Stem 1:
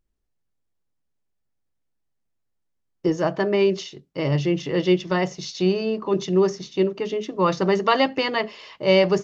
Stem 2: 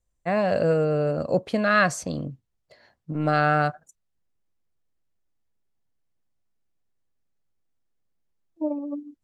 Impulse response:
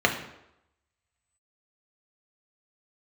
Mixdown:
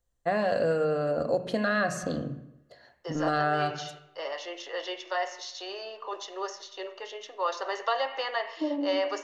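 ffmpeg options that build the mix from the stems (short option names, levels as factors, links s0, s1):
-filter_complex "[0:a]highpass=f=630:w=0.5412,highpass=f=630:w=1.3066,volume=0.473,asplit=2[s0][s1];[s1]volume=0.141[s2];[1:a]volume=0.75,asplit=2[s3][s4];[s4]volume=0.133[s5];[2:a]atrim=start_sample=2205[s6];[s2][s5]amix=inputs=2:normalize=0[s7];[s7][s6]afir=irnorm=-1:irlink=0[s8];[s0][s3][s8]amix=inputs=3:normalize=0,acrossover=split=760|2100[s9][s10][s11];[s9]acompressor=threshold=0.0447:ratio=4[s12];[s10]acompressor=threshold=0.0251:ratio=4[s13];[s11]acompressor=threshold=0.0141:ratio=4[s14];[s12][s13][s14]amix=inputs=3:normalize=0"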